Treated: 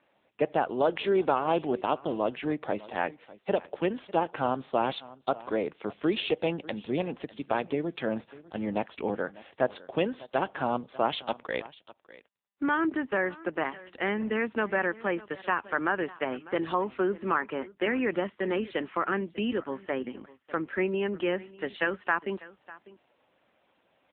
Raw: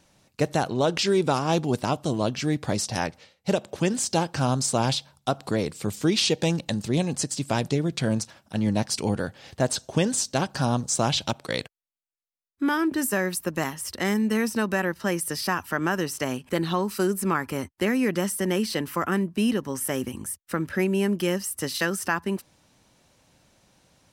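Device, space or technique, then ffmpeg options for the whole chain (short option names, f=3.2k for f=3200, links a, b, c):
satellite phone: -af "highpass=330,lowpass=3.3k,aecho=1:1:598:0.106" -ar 8000 -c:a libopencore_amrnb -b:a 6700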